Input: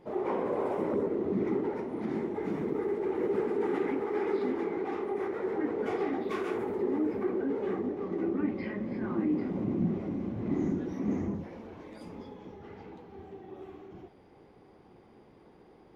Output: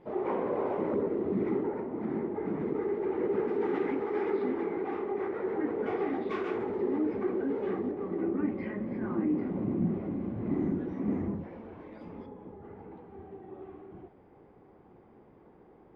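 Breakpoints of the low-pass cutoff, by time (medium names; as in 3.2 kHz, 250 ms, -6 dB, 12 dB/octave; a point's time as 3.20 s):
3.1 kHz
from 1.63 s 1.8 kHz
from 2.60 s 2.7 kHz
from 3.48 s 4.1 kHz
from 4.30 s 2.8 kHz
from 6.10 s 3.9 kHz
from 7.91 s 2.3 kHz
from 12.26 s 1.3 kHz
from 12.91 s 1.8 kHz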